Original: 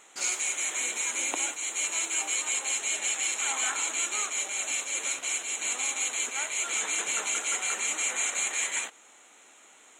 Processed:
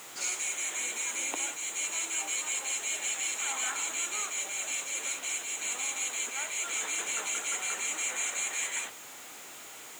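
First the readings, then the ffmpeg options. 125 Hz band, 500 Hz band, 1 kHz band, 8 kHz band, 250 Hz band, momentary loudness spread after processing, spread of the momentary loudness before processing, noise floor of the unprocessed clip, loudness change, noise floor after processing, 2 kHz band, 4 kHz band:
can't be measured, −3.0 dB, −3.0 dB, −3.5 dB, −2.5 dB, 3 LU, 2 LU, −56 dBFS, −3.5 dB, −47 dBFS, −3.5 dB, −3.0 dB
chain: -af "aeval=exprs='val(0)+0.5*0.0112*sgn(val(0))':channel_layout=same,acrusher=bits=7:mix=0:aa=0.000001,highpass=frequency=95:width=0.5412,highpass=frequency=95:width=1.3066,volume=-4.5dB"

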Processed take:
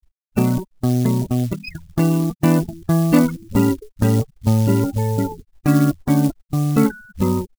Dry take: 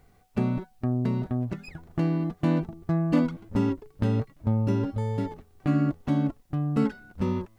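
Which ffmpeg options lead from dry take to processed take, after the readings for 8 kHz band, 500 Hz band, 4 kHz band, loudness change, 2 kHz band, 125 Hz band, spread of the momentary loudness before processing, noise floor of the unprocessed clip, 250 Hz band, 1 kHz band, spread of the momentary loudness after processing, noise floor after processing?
can't be measured, +8.5 dB, +12.0 dB, +8.5 dB, +9.5 dB, +8.5 dB, 7 LU, −60 dBFS, +8.5 dB, +9.0 dB, 7 LU, −79 dBFS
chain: -af "afftfilt=real='re*gte(hypot(re,im),0.0178)':imag='im*gte(hypot(re,im),0.0178)':win_size=1024:overlap=0.75,acrusher=bits=7:mode=log:mix=0:aa=0.000001,highshelf=frequency=2800:gain=10,volume=8.5dB"

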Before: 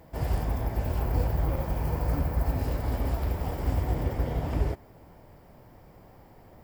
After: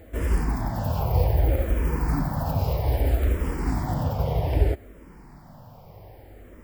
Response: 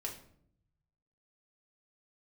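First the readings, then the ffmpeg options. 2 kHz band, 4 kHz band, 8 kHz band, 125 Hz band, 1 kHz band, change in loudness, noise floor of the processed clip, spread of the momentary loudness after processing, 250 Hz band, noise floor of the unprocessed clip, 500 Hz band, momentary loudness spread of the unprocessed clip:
+4.5 dB, +4.5 dB, +5.0 dB, +4.5 dB, +4.5 dB, +4.5 dB, −48 dBFS, 5 LU, +4.5 dB, −53 dBFS, +5.0 dB, 3 LU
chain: -filter_complex "[0:a]aeval=exprs='val(0)+0.002*(sin(2*PI*50*n/s)+sin(2*PI*2*50*n/s)/2+sin(2*PI*3*50*n/s)/3+sin(2*PI*4*50*n/s)/4+sin(2*PI*5*50*n/s)/5)':channel_layout=same,asplit=2[link_01][link_02];[link_02]afreqshift=-0.63[link_03];[link_01][link_03]amix=inputs=2:normalize=1,volume=7.5dB"

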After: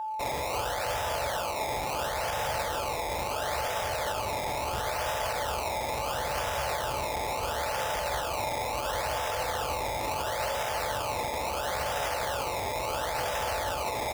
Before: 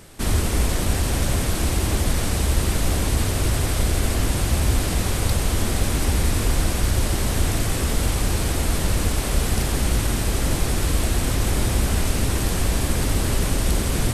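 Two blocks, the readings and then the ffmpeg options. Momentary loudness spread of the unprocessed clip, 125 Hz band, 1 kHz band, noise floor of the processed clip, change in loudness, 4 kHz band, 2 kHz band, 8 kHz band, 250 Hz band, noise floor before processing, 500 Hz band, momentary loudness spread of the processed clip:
1 LU, −20.0 dB, +3.0 dB, −33 dBFS, −8.0 dB, −6.5 dB, −3.5 dB, −11.5 dB, −18.5 dB, −24 dBFS, −1.5 dB, 1 LU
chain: -filter_complex "[0:a]asplit=2[link_01][link_02];[link_02]aeval=exprs='0.0596*(abs(mod(val(0)/0.0596+3,4)-2)-1)':channel_layout=same,volume=-5dB[link_03];[link_01][link_03]amix=inputs=2:normalize=0,aeval=exprs='0.501*(cos(1*acos(clip(val(0)/0.501,-1,1)))-cos(1*PI/2))+0.141*(cos(3*acos(clip(val(0)/0.501,-1,1)))-cos(3*PI/2))+0.178*(cos(6*acos(clip(val(0)/0.501,-1,1)))-cos(6*PI/2))':channel_layout=same,lowpass=2200,lowshelf=frequency=440:width_type=q:width=3:gain=-8.5,aecho=1:1:42|58:0.631|0.596,acrusher=samples=20:mix=1:aa=0.000001:lfo=1:lforange=20:lforate=0.73,aeval=exprs='val(0)+0.0316*sin(2*PI*870*n/s)':channel_layout=same,highpass=69,equalizer=frequency=180:width_type=o:width=1.7:gain=-12,alimiter=limit=-22dB:level=0:latency=1:release=10"

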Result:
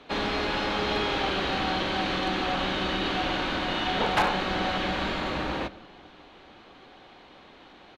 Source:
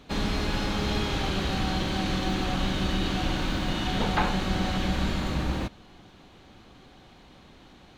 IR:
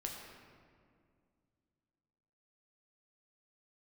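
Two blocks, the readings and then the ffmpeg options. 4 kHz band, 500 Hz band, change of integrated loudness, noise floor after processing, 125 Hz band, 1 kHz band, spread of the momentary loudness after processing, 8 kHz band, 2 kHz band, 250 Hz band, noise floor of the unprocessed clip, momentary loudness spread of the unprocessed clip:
+2.5 dB, +3.5 dB, +1.0 dB, −52 dBFS, −8.0 dB, +4.0 dB, 4 LU, −5.5 dB, +4.5 dB, −2.5 dB, −53 dBFS, 3 LU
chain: -filter_complex "[0:a]acrossover=split=300 4400:gain=0.2 1 0.158[link_01][link_02][link_03];[link_01][link_02][link_03]amix=inputs=3:normalize=0,aeval=exprs='0.1*(abs(mod(val(0)/0.1+3,4)-2)-1)':channel_layout=same,asplit=2[link_04][link_05];[1:a]atrim=start_sample=2205,asetrate=48510,aresample=44100[link_06];[link_05][link_06]afir=irnorm=-1:irlink=0,volume=-12.5dB[link_07];[link_04][link_07]amix=inputs=2:normalize=0,aresample=32000,aresample=44100,volume=3.5dB"

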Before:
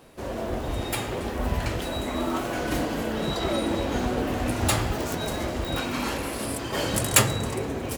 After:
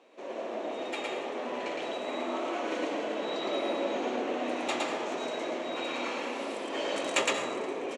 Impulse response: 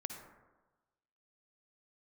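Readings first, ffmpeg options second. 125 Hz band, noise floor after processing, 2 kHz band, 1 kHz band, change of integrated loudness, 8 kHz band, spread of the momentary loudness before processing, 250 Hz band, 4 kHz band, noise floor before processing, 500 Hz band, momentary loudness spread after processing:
−28.5 dB, −38 dBFS, −4.0 dB, −3.5 dB, −6.0 dB, −13.5 dB, 7 LU, −8.0 dB, −5.5 dB, −33 dBFS, −2.5 dB, 6 LU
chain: -filter_complex "[0:a]highpass=frequency=290:width=0.5412,highpass=frequency=290:width=1.3066,equalizer=frequency=590:width_type=q:width=4:gain=3,equalizer=frequency=1500:width_type=q:width=4:gain=-5,equalizer=frequency=2400:width_type=q:width=4:gain=4,equalizer=frequency=4900:width_type=q:width=4:gain=-9,lowpass=frequency=6300:width=0.5412,lowpass=frequency=6300:width=1.3066,aecho=1:1:1157:0.2,asplit=2[link_01][link_02];[1:a]atrim=start_sample=2205,asetrate=34839,aresample=44100,adelay=113[link_03];[link_02][link_03]afir=irnorm=-1:irlink=0,volume=0.5dB[link_04];[link_01][link_04]amix=inputs=2:normalize=0,volume=-7dB"

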